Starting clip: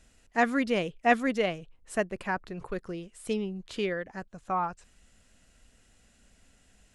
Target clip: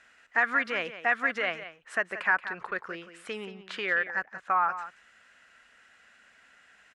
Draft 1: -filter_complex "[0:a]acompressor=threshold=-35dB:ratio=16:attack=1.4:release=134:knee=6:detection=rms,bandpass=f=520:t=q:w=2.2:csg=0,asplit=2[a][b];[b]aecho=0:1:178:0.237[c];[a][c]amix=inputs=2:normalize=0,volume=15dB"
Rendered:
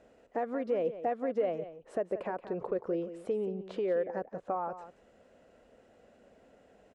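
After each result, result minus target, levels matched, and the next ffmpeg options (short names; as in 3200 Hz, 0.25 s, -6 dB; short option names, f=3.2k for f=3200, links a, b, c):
2000 Hz band -18.5 dB; compressor: peak gain reduction +9.5 dB
-filter_complex "[0:a]acompressor=threshold=-35dB:ratio=16:attack=1.4:release=134:knee=6:detection=rms,bandpass=f=1.6k:t=q:w=2.2:csg=0,asplit=2[a][b];[b]aecho=0:1:178:0.237[c];[a][c]amix=inputs=2:normalize=0,volume=15dB"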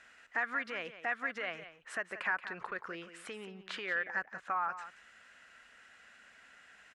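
compressor: peak gain reduction +9.5 dB
-filter_complex "[0:a]acompressor=threshold=-25dB:ratio=16:attack=1.4:release=134:knee=6:detection=rms,bandpass=f=1.6k:t=q:w=2.2:csg=0,asplit=2[a][b];[b]aecho=0:1:178:0.237[c];[a][c]amix=inputs=2:normalize=0,volume=15dB"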